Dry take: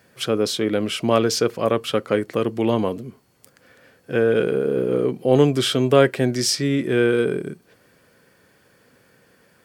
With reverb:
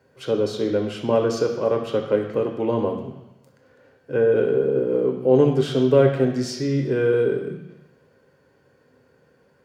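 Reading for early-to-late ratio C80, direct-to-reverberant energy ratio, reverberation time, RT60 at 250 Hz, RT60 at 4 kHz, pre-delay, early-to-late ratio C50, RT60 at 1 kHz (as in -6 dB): 9.5 dB, 3.0 dB, 1.0 s, 0.95 s, 1.1 s, 3 ms, 7.5 dB, 1.1 s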